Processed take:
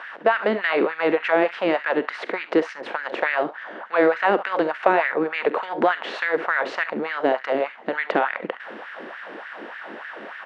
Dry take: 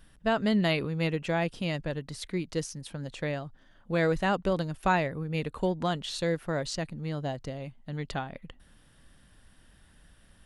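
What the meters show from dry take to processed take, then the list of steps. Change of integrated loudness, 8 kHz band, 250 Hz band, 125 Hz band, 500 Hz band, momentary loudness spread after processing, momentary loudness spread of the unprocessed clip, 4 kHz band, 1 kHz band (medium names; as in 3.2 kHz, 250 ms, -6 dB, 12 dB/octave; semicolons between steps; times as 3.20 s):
+8.0 dB, under -10 dB, +3.5 dB, -13.5 dB, +10.0 dB, 16 LU, 12 LU, +2.0 dB, +10.0 dB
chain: spectral levelling over time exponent 0.6; early reflections 45 ms -16 dB, 68 ms -16 dB; compression, threshold -23 dBFS, peak gain reduction 5.5 dB; Chebyshev band-pass 240–2000 Hz, order 2; LFO high-pass sine 3.4 Hz 310–1800 Hz; trim +8 dB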